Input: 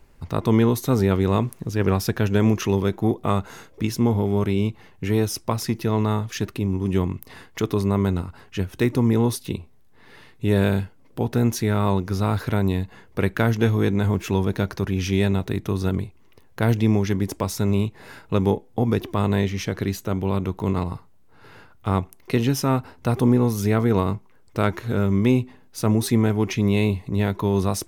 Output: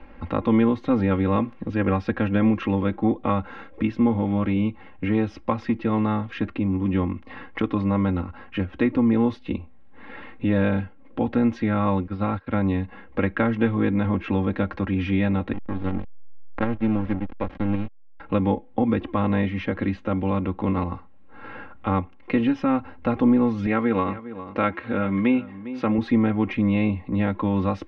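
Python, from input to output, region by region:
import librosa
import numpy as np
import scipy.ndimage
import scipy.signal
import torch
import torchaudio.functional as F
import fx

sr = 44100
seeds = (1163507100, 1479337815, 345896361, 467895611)

y = fx.chain(x, sr, fx.brickwall_lowpass(high_hz=5500.0),
    fx.upward_expand(threshold_db=-35.0, expansion=2.5), at=(12.07, 12.55))
y = fx.chain(y, sr, fx.tremolo_shape(shape='saw_up', hz=1.8, depth_pct=35),
    fx.backlash(play_db=-19.5), at=(15.53, 18.2))
y = fx.chain(y, sr, fx.highpass(hz=230.0, slope=6),
    fx.echo_single(ms=404, db=-17.0),
    fx.dynamic_eq(hz=2600.0, q=0.89, threshold_db=-41.0, ratio=4.0, max_db=4), at=(23.66, 25.98))
y = scipy.signal.sosfilt(scipy.signal.butter(4, 2800.0, 'lowpass', fs=sr, output='sos'), y)
y = y + 0.87 * np.pad(y, (int(3.7 * sr / 1000.0), 0))[:len(y)]
y = fx.band_squash(y, sr, depth_pct=40)
y = y * 10.0 ** (-2.0 / 20.0)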